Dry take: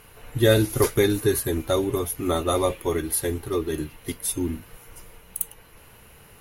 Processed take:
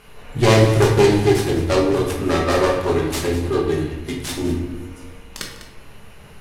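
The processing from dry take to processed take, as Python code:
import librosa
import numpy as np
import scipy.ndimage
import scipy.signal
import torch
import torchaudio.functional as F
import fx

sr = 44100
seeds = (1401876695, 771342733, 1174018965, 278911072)

y = fx.self_delay(x, sr, depth_ms=0.4)
y = scipy.signal.sosfilt(scipy.signal.butter(2, 8400.0, 'lowpass', fs=sr, output='sos'), y)
y = y + 10.0 ** (-13.5 / 20.0) * np.pad(y, (int(200 * sr / 1000.0), 0))[:len(y)]
y = fx.room_shoebox(y, sr, seeds[0], volume_m3=290.0, walls='mixed', distance_m=1.3)
y = y * 10.0 ** (2.0 / 20.0)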